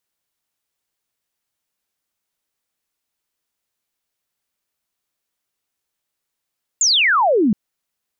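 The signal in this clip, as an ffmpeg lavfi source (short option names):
-f lavfi -i "aevalsrc='0.251*clip(t/0.002,0,1)*clip((0.72-t)/0.002,0,1)*sin(2*PI*7400*0.72/log(190/7400)*(exp(log(190/7400)*t/0.72)-1))':d=0.72:s=44100"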